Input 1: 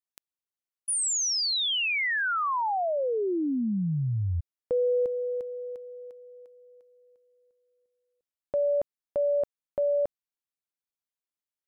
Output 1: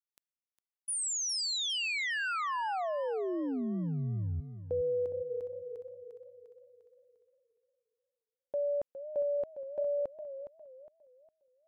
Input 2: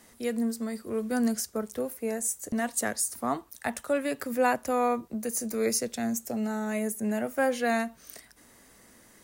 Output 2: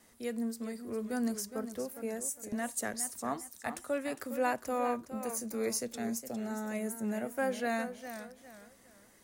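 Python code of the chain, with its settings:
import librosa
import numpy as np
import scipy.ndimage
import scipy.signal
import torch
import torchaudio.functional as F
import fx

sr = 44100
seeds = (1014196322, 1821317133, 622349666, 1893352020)

y = fx.gate_hold(x, sr, open_db=-55.0, close_db=-58.0, hold_ms=71.0, range_db=-8, attack_ms=1.2, release_ms=100.0)
y = fx.echo_warbled(y, sr, ms=410, feedback_pct=32, rate_hz=2.8, cents=108, wet_db=-11.0)
y = y * librosa.db_to_amplitude(-6.5)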